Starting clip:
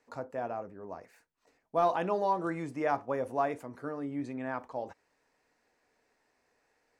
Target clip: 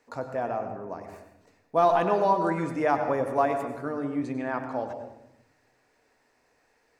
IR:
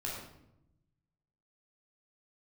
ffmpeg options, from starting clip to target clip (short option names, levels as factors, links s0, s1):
-filter_complex "[0:a]asplit=2[s0][s1];[1:a]atrim=start_sample=2205,adelay=96[s2];[s1][s2]afir=irnorm=-1:irlink=0,volume=0.355[s3];[s0][s3]amix=inputs=2:normalize=0,volume=1.88"